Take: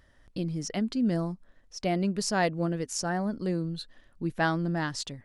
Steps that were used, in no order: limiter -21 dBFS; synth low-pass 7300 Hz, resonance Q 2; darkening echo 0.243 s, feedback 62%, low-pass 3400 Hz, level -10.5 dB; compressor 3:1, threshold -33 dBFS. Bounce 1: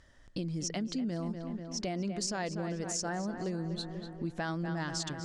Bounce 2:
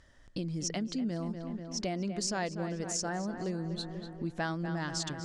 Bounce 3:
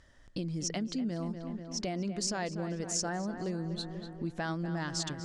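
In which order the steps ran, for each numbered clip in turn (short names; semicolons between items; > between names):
darkening echo > limiter > synth low-pass > compressor; darkening echo > compressor > synth low-pass > limiter; limiter > darkening echo > compressor > synth low-pass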